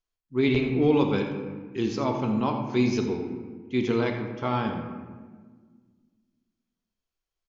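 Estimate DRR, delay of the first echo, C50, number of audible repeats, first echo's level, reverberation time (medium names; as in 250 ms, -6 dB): 3.0 dB, 85 ms, 5.0 dB, 1, -12.5 dB, 1.5 s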